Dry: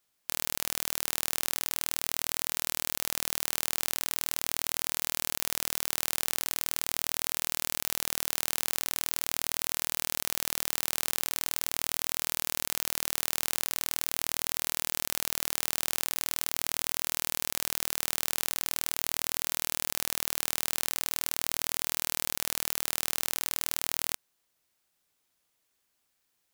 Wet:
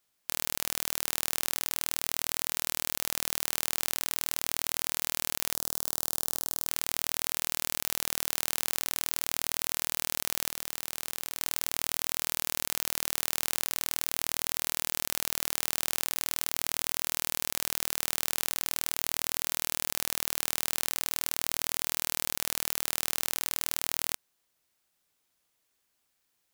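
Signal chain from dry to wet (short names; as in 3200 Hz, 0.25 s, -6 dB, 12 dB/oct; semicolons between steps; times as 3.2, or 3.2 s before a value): 5.54–6.68 bell 2300 Hz -14.5 dB 0.99 oct; 10.49–11.41 overloaded stage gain 8 dB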